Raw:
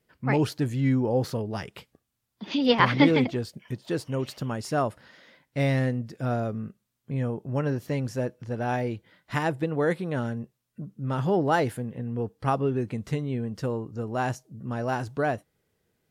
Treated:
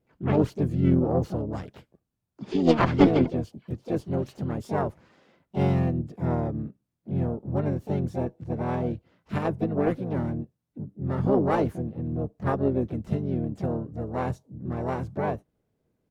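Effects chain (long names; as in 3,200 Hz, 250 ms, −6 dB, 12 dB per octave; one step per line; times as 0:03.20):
notch filter 1,900 Hz, Q 20
pitch-shifted copies added −7 semitones −6 dB, +5 semitones −6 dB, +7 semitones −8 dB
harmonic generator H 2 −10 dB, 7 −31 dB, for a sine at −3.5 dBFS
tilt shelving filter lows +7 dB, about 1,100 Hz
level −5.5 dB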